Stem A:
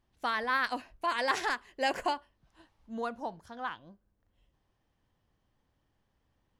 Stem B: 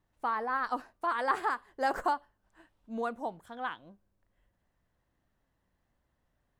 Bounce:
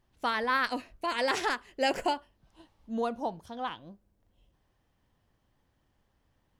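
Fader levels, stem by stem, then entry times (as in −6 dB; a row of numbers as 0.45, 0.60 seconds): +2.5, −4.0 decibels; 0.00, 0.00 seconds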